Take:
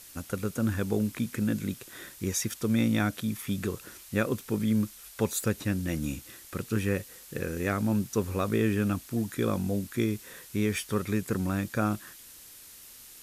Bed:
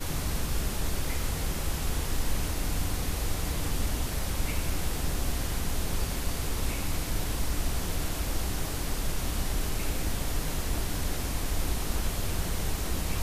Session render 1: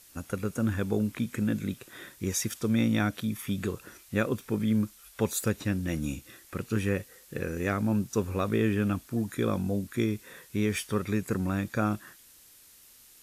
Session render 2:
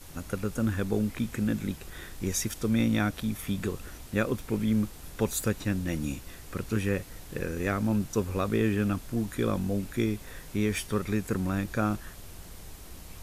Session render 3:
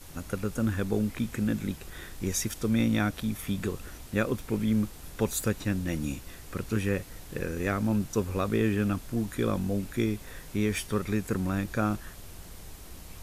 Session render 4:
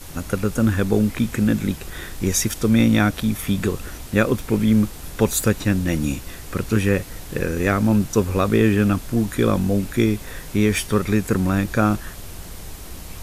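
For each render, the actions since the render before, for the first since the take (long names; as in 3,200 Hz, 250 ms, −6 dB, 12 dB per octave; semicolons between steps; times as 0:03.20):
noise reduction from a noise print 6 dB
mix in bed −15.5 dB
no processing that can be heard
level +9.5 dB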